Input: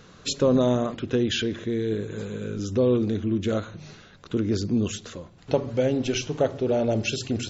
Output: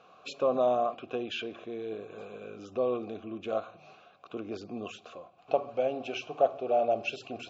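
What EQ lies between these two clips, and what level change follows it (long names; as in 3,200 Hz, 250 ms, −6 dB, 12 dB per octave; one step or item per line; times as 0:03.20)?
formant filter a
+7.5 dB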